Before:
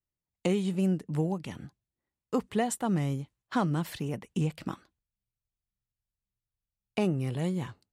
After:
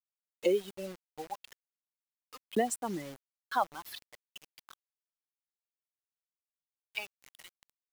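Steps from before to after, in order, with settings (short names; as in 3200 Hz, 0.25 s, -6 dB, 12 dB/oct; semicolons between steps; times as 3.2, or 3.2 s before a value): per-bin expansion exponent 2; upward compressor, threshold -35 dBFS; LFO high-pass saw up 0.39 Hz 280–2700 Hz; bit-crush 8-bit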